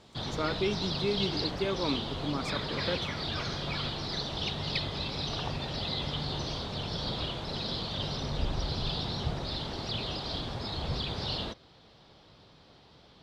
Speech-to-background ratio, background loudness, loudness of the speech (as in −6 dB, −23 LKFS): −1.0 dB, −33.5 LKFS, −34.5 LKFS